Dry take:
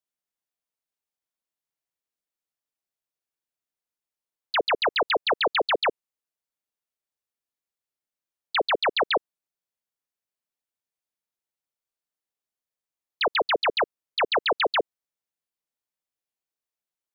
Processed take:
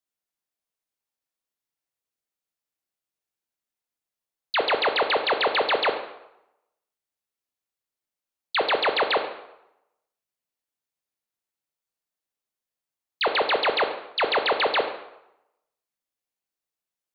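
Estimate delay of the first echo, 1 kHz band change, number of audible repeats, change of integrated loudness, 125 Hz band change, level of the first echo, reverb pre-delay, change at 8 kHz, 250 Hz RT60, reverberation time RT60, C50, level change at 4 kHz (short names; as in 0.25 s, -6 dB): none, +1.5 dB, none, +1.0 dB, n/a, none, 13 ms, n/a, 0.80 s, 0.85 s, 8.5 dB, +1.0 dB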